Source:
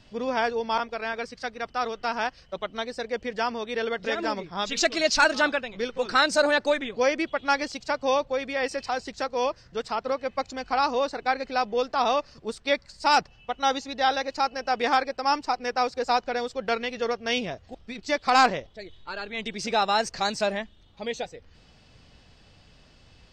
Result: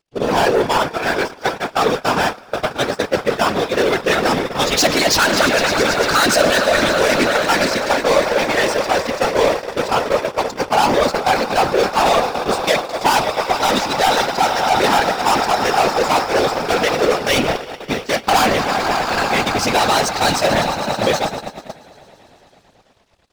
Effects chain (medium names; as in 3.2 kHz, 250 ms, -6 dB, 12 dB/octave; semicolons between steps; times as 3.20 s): on a send: echo with a slow build-up 111 ms, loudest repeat 5, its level -16.5 dB; on the sum: waveshaping leveller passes 5; de-hum 176.8 Hz, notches 34; whisper effect; gate -15 dBFS, range -21 dB; trim -1.5 dB